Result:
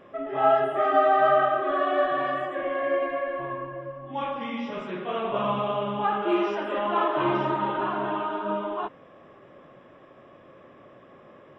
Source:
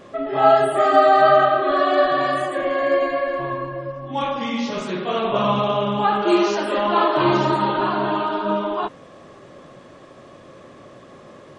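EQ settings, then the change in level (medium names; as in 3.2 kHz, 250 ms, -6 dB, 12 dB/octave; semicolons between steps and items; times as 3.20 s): Savitzky-Golay filter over 25 samples; bass shelf 210 Hz -4.5 dB; -6.0 dB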